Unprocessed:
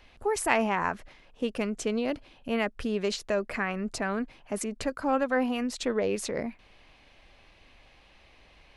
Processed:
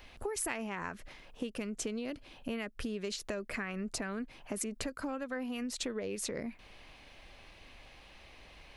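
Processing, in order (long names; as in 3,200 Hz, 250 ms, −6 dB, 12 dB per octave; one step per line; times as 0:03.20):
dynamic equaliser 810 Hz, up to −7 dB, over −42 dBFS, Q 1.2
downward compressor 6 to 1, threshold −37 dBFS, peak gain reduction 14.5 dB
high-shelf EQ 9,800 Hz +9 dB
level +2 dB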